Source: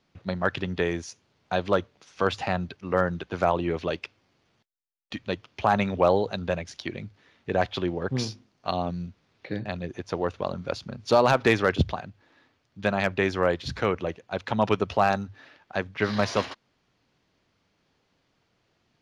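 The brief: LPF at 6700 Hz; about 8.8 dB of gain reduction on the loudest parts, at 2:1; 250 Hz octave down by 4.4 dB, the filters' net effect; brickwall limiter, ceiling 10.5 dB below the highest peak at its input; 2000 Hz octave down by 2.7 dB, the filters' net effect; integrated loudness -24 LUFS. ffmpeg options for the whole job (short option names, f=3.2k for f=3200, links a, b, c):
-af "lowpass=6.7k,equalizer=f=250:t=o:g=-6.5,equalizer=f=2k:t=o:g=-3.5,acompressor=threshold=-33dB:ratio=2,volume=15.5dB,alimiter=limit=-10dB:level=0:latency=1"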